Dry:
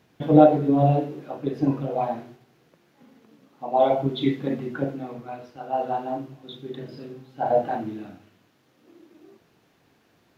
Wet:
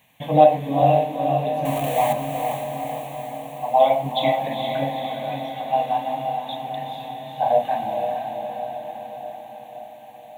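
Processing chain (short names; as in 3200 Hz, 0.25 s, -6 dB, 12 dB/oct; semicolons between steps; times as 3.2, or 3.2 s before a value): 1.65–2.13 zero-crossing step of -29.5 dBFS; tilt +2.5 dB/oct; fixed phaser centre 1400 Hz, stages 6; diffused feedback echo 0.462 s, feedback 65%, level -5 dB; gain +6 dB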